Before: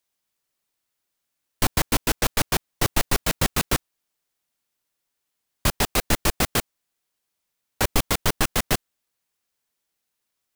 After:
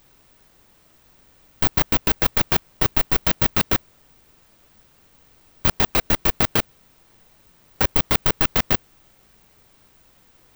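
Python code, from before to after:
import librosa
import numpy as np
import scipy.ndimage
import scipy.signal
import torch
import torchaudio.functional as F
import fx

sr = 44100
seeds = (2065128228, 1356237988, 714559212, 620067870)

p1 = scipy.signal.sosfilt(scipy.signal.butter(2, 4800.0, 'lowpass', fs=sr, output='sos'), x)
p2 = fx.over_compress(p1, sr, threshold_db=-27.0, ratio=-1.0)
p3 = p1 + (p2 * 10.0 ** (3.0 / 20.0))
p4 = fx.vibrato(p3, sr, rate_hz=0.61, depth_cents=17.0)
p5 = fx.dmg_noise_colour(p4, sr, seeds[0], colour='pink', level_db=-54.0)
p6 = (np.kron(scipy.signal.resample_poly(p5, 1, 2), np.eye(2)[0]) * 2)[:len(p5)]
y = p6 * 10.0 ** (-4.0 / 20.0)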